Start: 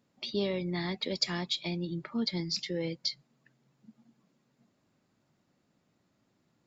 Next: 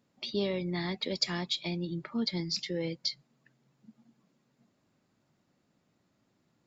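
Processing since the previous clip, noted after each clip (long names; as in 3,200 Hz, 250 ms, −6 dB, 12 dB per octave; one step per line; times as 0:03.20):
no processing that can be heard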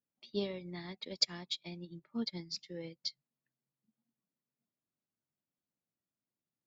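expander for the loud parts 2.5 to 1, over −42 dBFS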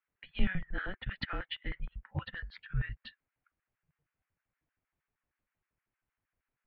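auto-filter high-pass square 6.4 Hz 340–1,900 Hz
single-sideband voice off tune −380 Hz 260–2,900 Hz
level +9 dB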